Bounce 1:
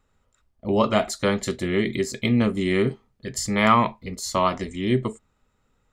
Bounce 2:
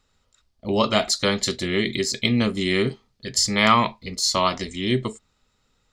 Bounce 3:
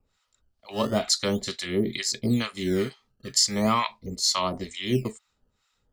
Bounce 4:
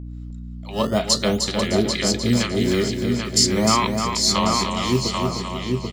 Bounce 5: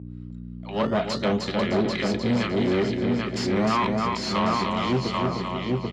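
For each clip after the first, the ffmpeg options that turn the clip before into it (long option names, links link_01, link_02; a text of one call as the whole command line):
ffmpeg -i in.wav -af "equalizer=frequency=4600:width_type=o:width=1.4:gain=13.5,volume=-1dB" out.wav
ffmpeg -i in.wav -filter_complex "[0:a]acrossover=split=820[link_01][link_02];[link_01]aeval=exprs='val(0)*(1-1/2+1/2*cos(2*PI*2.2*n/s))':channel_layout=same[link_03];[link_02]aeval=exprs='val(0)*(1-1/2-1/2*cos(2*PI*2.2*n/s))':channel_layout=same[link_04];[link_03][link_04]amix=inputs=2:normalize=0,acrossover=split=270|5700[link_05][link_06][link_07];[link_05]acrusher=samples=17:mix=1:aa=0.000001:lfo=1:lforange=27.2:lforate=0.4[link_08];[link_08][link_06][link_07]amix=inputs=3:normalize=0" out.wav
ffmpeg -i in.wav -filter_complex "[0:a]asplit=2[link_01][link_02];[link_02]adelay=788,lowpass=frequency=3500:poles=1,volume=-3.5dB,asplit=2[link_03][link_04];[link_04]adelay=788,lowpass=frequency=3500:poles=1,volume=0.28,asplit=2[link_05][link_06];[link_06]adelay=788,lowpass=frequency=3500:poles=1,volume=0.28,asplit=2[link_07][link_08];[link_08]adelay=788,lowpass=frequency=3500:poles=1,volume=0.28[link_09];[link_03][link_05][link_07][link_09]amix=inputs=4:normalize=0[link_10];[link_01][link_10]amix=inputs=2:normalize=0,aeval=exprs='val(0)+0.0158*(sin(2*PI*60*n/s)+sin(2*PI*2*60*n/s)/2+sin(2*PI*3*60*n/s)/3+sin(2*PI*4*60*n/s)/4+sin(2*PI*5*60*n/s)/5)':channel_layout=same,asplit=2[link_11][link_12];[link_12]aecho=0:1:305|610|915|1220:0.501|0.18|0.065|0.0234[link_13];[link_11][link_13]amix=inputs=2:normalize=0,volume=4dB" out.wav
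ffmpeg -i in.wav -af "aeval=exprs='(tanh(8.91*val(0)+0.4)-tanh(0.4))/8.91':channel_layout=same,highpass=100,lowpass=2800,volume=2dB" out.wav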